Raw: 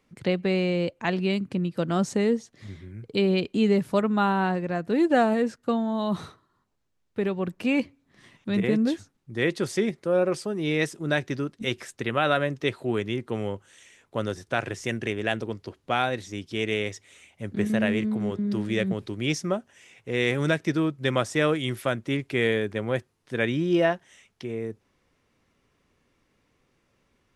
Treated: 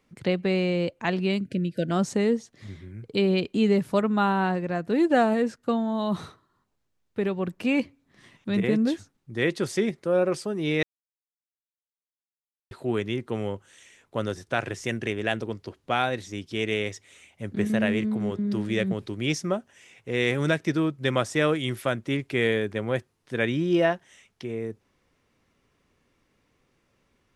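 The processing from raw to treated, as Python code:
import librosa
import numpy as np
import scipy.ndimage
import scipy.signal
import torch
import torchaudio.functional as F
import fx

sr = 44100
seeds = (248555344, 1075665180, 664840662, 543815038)

y = fx.spec_erase(x, sr, start_s=1.41, length_s=0.5, low_hz=670.0, high_hz=1400.0)
y = fx.edit(y, sr, fx.silence(start_s=10.83, length_s=1.88), tone=tone)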